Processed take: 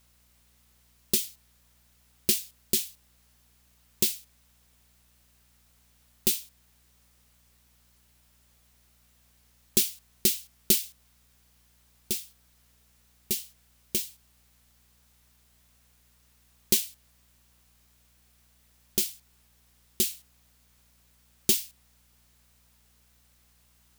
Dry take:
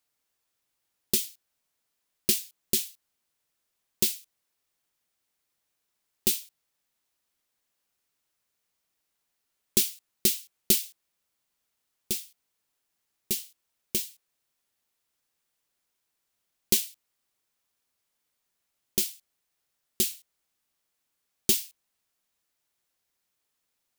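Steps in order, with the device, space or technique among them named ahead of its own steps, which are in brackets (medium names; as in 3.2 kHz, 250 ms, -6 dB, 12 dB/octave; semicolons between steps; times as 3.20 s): video cassette with head-switching buzz (mains buzz 60 Hz, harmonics 4, -67 dBFS -7 dB/octave; white noise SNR 30 dB)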